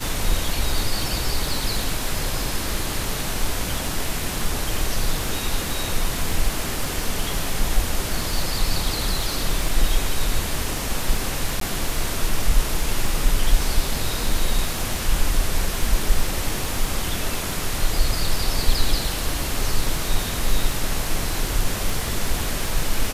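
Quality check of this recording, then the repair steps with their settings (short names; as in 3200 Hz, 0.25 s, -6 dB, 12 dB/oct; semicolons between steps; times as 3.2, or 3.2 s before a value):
crackle 37/s -27 dBFS
11.6–11.61 gap 13 ms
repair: de-click; interpolate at 11.6, 13 ms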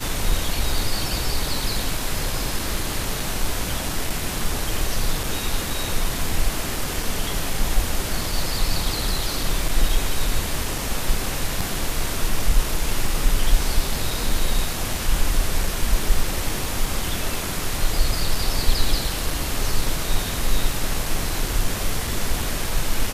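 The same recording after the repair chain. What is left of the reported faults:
none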